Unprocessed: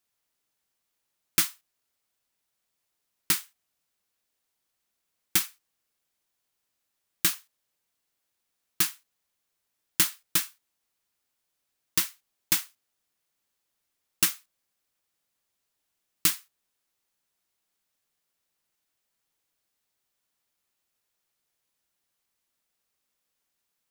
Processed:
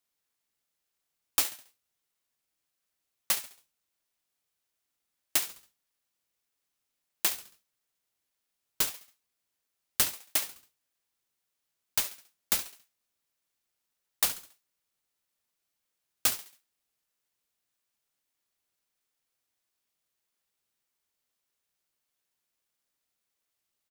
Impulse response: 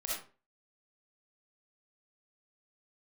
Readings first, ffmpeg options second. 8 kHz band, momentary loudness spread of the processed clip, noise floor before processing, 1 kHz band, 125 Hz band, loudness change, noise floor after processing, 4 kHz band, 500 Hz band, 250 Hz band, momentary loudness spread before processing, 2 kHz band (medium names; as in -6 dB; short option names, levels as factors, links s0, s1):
-3.0 dB, 12 LU, -81 dBFS, 0.0 dB, -9.5 dB, -3.0 dB, -84 dBFS, -3.0 dB, +3.0 dB, -8.5 dB, 13 LU, -4.0 dB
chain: -af "equalizer=f=300:w=1.5:g=-7,aecho=1:1:69|138|207|276:0.2|0.0758|0.0288|0.0109,aeval=exprs='val(0)*sin(2*PI*910*n/s+910*0.55/1.6*sin(2*PI*1.6*n/s))':c=same"